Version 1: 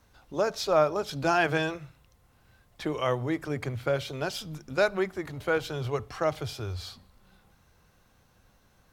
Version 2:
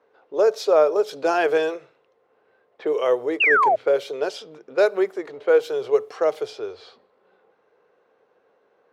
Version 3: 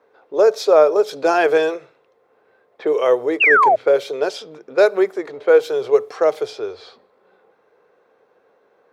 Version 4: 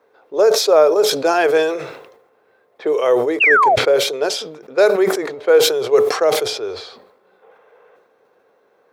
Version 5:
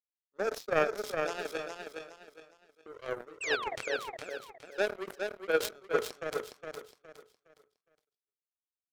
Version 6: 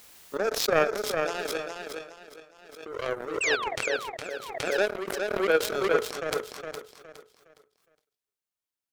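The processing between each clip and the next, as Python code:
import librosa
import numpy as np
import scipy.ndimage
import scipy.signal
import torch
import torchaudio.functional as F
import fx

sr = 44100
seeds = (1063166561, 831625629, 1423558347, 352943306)

y1 = fx.highpass_res(x, sr, hz=440.0, q=5.0)
y1 = fx.env_lowpass(y1, sr, base_hz=2100.0, full_db=-18.5)
y1 = fx.spec_paint(y1, sr, seeds[0], shape='fall', start_s=3.4, length_s=0.36, low_hz=600.0, high_hz=2900.0, level_db=-17.0)
y2 = fx.notch(y1, sr, hz=2900.0, q=13.0)
y2 = y2 * librosa.db_to_amplitude(4.5)
y3 = fx.spec_box(y2, sr, start_s=7.42, length_s=0.54, low_hz=410.0, high_hz=3700.0, gain_db=8)
y3 = fx.high_shelf(y3, sr, hz=6600.0, db=7.5)
y3 = fx.sustainer(y3, sr, db_per_s=66.0)
y4 = fx.notch(y3, sr, hz=760.0, q=23.0)
y4 = fx.power_curve(y4, sr, exponent=3.0)
y4 = fx.echo_feedback(y4, sr, ms=413, feedback_pct=31, wet_db=-5.5)
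y4 = y4 * librosa.db_to_amplitude(-8.5)
y5 = fx.pre_swell(y4, sr, db_per_s=49.0)
y5 = y5 * librosa.db_to_amplitude(4.0)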